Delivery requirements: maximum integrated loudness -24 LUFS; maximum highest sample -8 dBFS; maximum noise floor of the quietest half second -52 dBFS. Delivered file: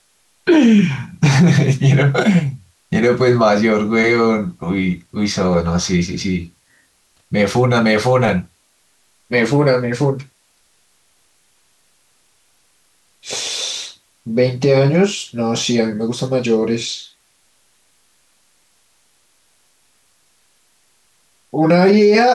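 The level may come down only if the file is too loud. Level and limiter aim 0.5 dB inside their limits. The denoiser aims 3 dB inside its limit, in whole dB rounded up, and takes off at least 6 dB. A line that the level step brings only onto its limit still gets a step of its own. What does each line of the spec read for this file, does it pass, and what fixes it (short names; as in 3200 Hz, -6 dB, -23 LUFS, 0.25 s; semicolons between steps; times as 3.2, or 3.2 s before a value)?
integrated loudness -16.0 LUFS: fail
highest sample -4.0 dBFS: fail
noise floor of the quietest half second -59 dBFS: OK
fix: gain -8.5 dB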